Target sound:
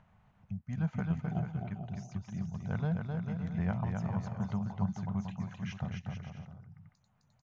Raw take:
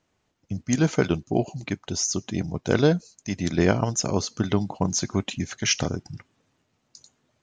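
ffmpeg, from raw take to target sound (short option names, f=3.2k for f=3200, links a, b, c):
-filter_complex "[0:a]asplit=2[a][b];[b]aecho=0:1:260|442|569.4|658.6|721:0.631|0.398|0.251|0.158|0.1[c];[a][c]amix=inputs=2:normalize=0,acompressor=mode=upward:threshold=-34dB:ratio=2.5,firequalizer=gain_entry='entry(200,0);entry(290,-23);entry(750,-4);entry(5100,-27)':delay=0.05:min_phase=1,volume=-8.5dB"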